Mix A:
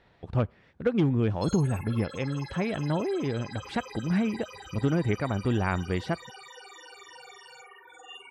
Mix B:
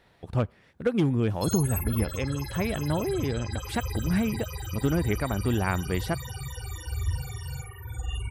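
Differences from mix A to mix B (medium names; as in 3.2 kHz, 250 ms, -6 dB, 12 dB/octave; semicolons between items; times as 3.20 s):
background: remove high-pass 420 Hz 24 dB/octave; master: remove distance through air 110 m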